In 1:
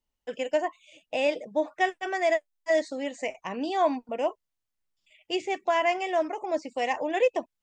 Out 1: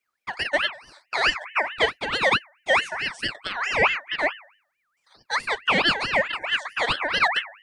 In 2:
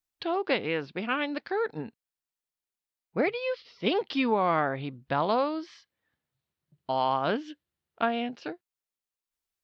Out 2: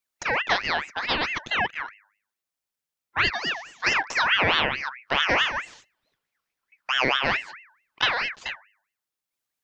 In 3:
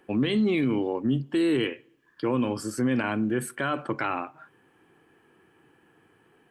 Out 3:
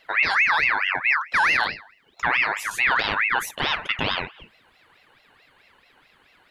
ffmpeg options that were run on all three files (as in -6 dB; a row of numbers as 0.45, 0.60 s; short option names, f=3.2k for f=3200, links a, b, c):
-af "bandreject=f=102:t=h:w=4,bandreject=f=204:t=h:w=4,bandreject=f=306:t=h:w=4,bandreject=f=408:t=h:w=4,bandreject=f=510:t=h:w=4,bandreject=f=612:t=h:w=4,aeval=exprs='val(0)*sin(2*PI*1800*n/s+1800*0.35/4.6*sin(2*PI*4.6*n/s))':c=same,volume=6.5dB"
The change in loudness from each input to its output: +5.0, +5.0, +6.0 LU